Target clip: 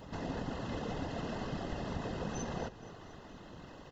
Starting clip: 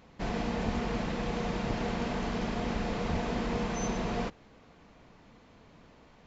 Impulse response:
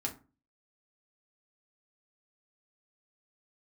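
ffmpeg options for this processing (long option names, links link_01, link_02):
-filter_complex "[0:a]acompressor=threshold=-46dB:ratio=3,atempo=1.6,afftfilt=real='hypot(re,im)*cos(2*PI*random(0))':imag='hypot(re,im)*sin(2*PI*random(1))':win_size=512:overlap=0.75,asuperstop=centerf=2300:order=8:qfactor=5.9,asplit=2[link_01][link_02];[link_02]asplit=6[link_03][link_04][link_05][link_06][link_07][link_08];[link_03]adelay=234,afreqshift=-31,volume=-16.5dB[link_09];[link_04]adelay=468,afreqshift=-62,volume=-20.9dB[link_10];[link_05]adelay=702,afreqshift=-93,volume=-25.4dB[link_11];[link_06]adelay=936,afreqshift=-124,volume=-29.8dB[link_12];[link_07]adelay=1170,afreqshift=-155,volume=-34.2dB[link_13];[link_08]adelay=1404,afreqshift=-186,volume=-38.7dB[link_14];[link_09][link_10][link_11][link_12][link_13][link_14]amix=inputs=6:normalize=0[link_15];[link_01][link_15]amix=inputs=2:normalize=0,volume=12.5dB"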